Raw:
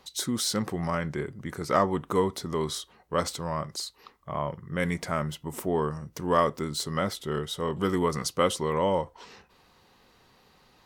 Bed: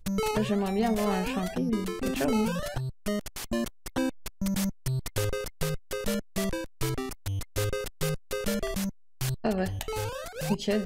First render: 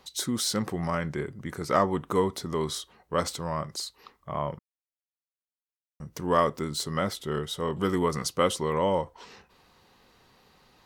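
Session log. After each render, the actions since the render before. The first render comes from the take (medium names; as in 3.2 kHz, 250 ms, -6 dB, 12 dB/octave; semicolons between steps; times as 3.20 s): 4.59–6.00 s: mute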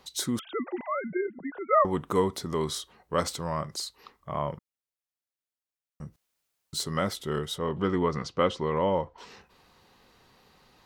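0.39–1.85 s: formants replaced by sine waves; 6.16–6.73 s: room tone; 7.58–9.18 s: distance through air 170 m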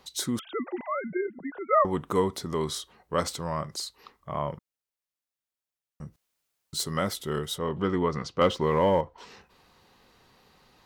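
6.79–7.69 s: treble shelf 9.2 kHz +8 dB; 8.41–9.01 s: waveshaping leveller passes 1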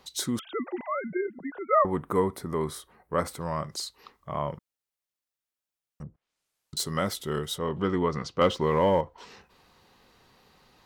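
1.64–3.41 s: high-order bell 4.5 kHz -10 dB; 6.02–6.77 s: low-pass that closes with the level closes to 700 Hz, closed at -39.5 dBFS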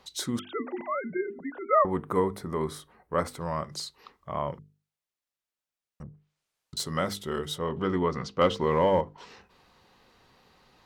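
treble shelf 8.2 kHz -7 dB; hum notches 50/100/150/200/250/300/350/400/450 Hz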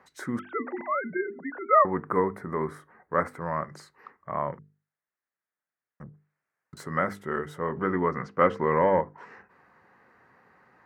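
high-pass 110 Hz 12 dB/octave; resonant high shelf 2.5 kHz -12 dB, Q 3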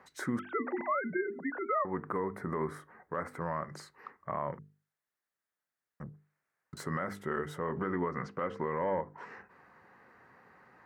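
compression 4:1, threshold -28 dBFS, peak gain reduction 12 dB; peak limiter -22 dBFS, peak gain reduction 8.5 dB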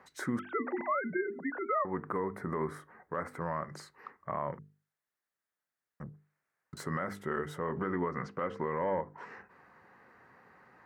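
no audible change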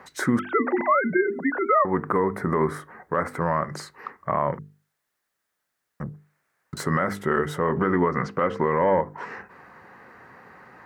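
trim +11.5 dB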